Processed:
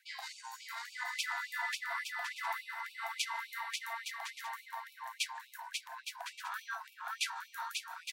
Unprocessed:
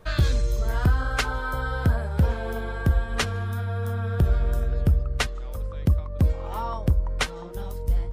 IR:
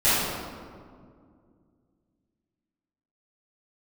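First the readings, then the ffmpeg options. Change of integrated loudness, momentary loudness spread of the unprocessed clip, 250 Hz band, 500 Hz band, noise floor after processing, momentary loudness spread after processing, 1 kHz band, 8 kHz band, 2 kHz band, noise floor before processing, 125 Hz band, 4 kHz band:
-13.5 dB, 7 LU, under -40 dB, -24.5 dB, -60 dBFS, 8 LU, -7.0 dB, -4.0 dB, -5.5 dB, -34 dBFS, under -40 dB, -5.0 dB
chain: -af "areverse,acompressor=threshold=-26dB:ratio=12,areverse,afreqshift=450,aeval=exprs='0.188*(cos(1*acos(clip(val(0)/0.188,-1,1)))-cos(1*PI/2))+0.00596*(cos(7*acos(clip(val(0)/0.188,-1,1)))-cos(7*PI/2))':c=same,aecho=1:1:540|864|1058|1175|1245:0.631|0.398|0.251|0.158|0.1,afftfilt=real='re*gte(b*sr/1024,650*pow(2300/650,0.5+0.5*sin(2*PI*3.5*pts/sr)))':imag='im*gte(b*sr/1024,650*pow(2300/650,0.5+0.5*sin(2*PI*3.5*pts/sr)))':win_size=1024:overlap=0.75,volume=-2dB"

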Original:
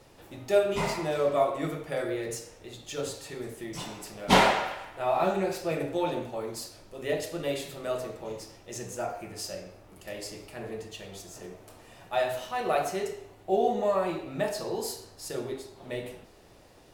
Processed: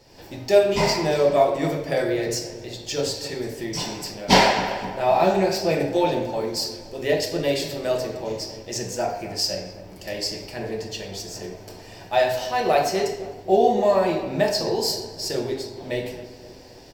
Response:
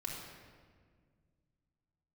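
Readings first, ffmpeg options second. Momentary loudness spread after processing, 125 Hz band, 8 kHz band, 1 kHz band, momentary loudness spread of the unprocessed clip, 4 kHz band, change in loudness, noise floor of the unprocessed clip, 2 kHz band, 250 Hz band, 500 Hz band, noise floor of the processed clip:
15 LU, +7.5 dB, +8.0 dB, +6.5 dB, 17 LU, +10.0 dB, +7.5 dB, -55 dBFS, +6.0 dB, +7.5 dB, +7.5 dB, -43 dBFS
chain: -filter_complex "[0:a]superequalizer=10b=0.447:14b=2.51:16b=0.447,asplit=2[a][b];[b]adelay=260,lowpass=f=1k:p=1,volume=-12dB,asplit=2[c][d];[d]adelay=260,lowpass=f=1k:p=1,volume=0.52,asplit=2[e][f];[f]adelay=260,lowpass=f=1k:p=1,volume=0.52,asplit=2[g][h];[h]adelay=260,lowpass=f=1k:p=1,volume=0.52,asplit=2[i][j];[j]adelay=260,lowpass=f=1k:p=1,volume=0.52[k];[a][c][e][g][i][k]amix=inputs=6:normalize=0,dynaudnorm=f=140:g=3:m=9dB,volume=-1dB"

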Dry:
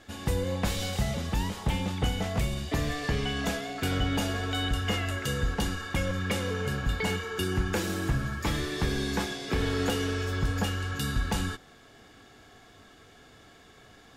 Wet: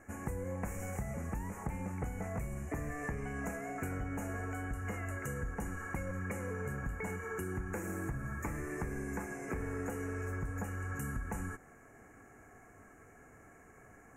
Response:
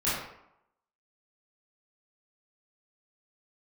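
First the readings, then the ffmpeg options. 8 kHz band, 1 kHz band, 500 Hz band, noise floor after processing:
-10.5 dB, -8.5 dB, -8.5 dB, -58 dBFS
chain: -af "acompressor=threshold=-32dB:ratio=6,asuperstop=centerf=3900:order=8:qfactor=0.92,volume=-3dB"

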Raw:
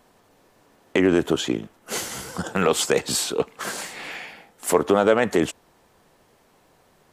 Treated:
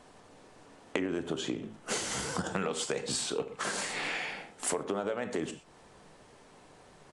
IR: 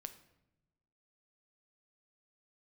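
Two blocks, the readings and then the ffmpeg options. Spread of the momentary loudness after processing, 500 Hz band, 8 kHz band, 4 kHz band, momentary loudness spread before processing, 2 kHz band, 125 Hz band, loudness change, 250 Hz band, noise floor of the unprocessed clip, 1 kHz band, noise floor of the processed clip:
5 LU, -13.0 dB, -7.0 dB, -7.5 dB, 14 LU, -7.5 dB, -10.0 dB, -11.0 dB, -12.0 dB, -60 dBFS, -10.5 dB, -57 dBFS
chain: -filter_complex "[0:a]aresample=22050,aresample=44100[a];[1:a]atrim=start_sample=2205,afade=t=out:st=0.18:d=0.01,atrim=end_sample=8379[b];[a][b]afir=irnorm=-1:irlink=0,acompressor=threshold=-37dB:ratio=8,volume=7dB"

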